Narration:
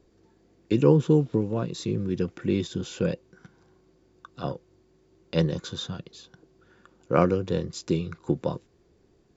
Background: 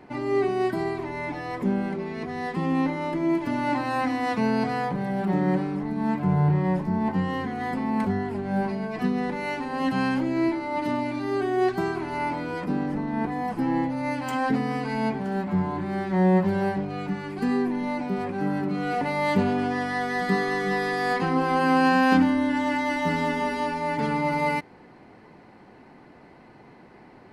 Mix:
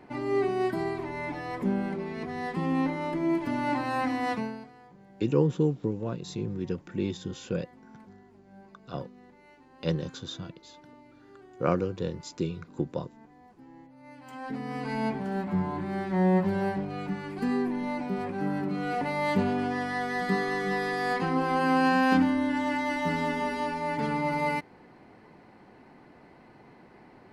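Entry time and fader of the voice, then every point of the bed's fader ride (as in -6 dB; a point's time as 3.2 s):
4.50 s, -5.0 dB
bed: 4.33 s -3 dB
4.73 s -26.5 dB
13.86 s -26.5 dB
14.89 s -3.5 dB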